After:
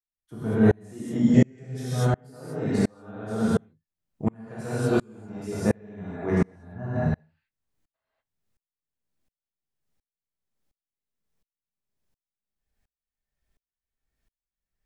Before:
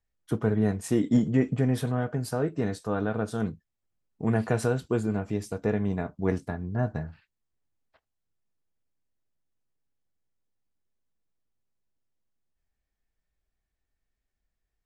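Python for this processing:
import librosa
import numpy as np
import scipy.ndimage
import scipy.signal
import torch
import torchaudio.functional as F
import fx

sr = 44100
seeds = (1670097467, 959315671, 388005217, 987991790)

y = fx.graphic_eq_15(x, sr, hz=(250, 1000, 6300), db=(-7, -8, 10), at=(1.28, 1.96))
y = fx.rev_gated(y, sr, seeds[0], gate_ms=260, shape='flat', drr_db=-8.0)
y = fx.tremolo_decay(y, sr, direction='swelling', hz=1.4, depth_db=36)
y = y * 10.0 ** (2.0 / 20.0)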